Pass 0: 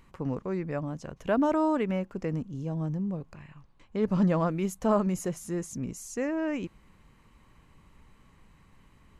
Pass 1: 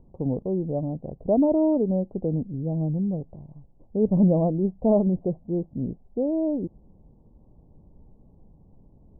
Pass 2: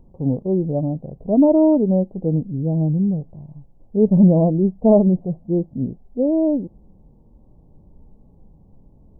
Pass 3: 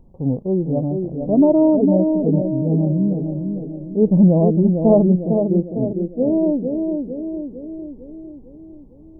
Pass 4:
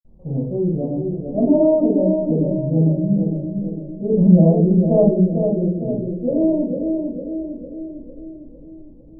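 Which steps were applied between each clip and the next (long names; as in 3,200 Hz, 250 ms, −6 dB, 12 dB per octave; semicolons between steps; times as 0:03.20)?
Butterworth low-pass 770 Hz 48 dB per octave; level +5.5 dB
harmonic and percussive parts rebalanced percussive −12 dB; level +7 dB
feedback echo with a band-pass in the loop 453 ms, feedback 60%, band-pass 350 Hz, level −4 dB
convolution reverb RT60 0.50 s, pre-delay 46 ms; level +3.5 dB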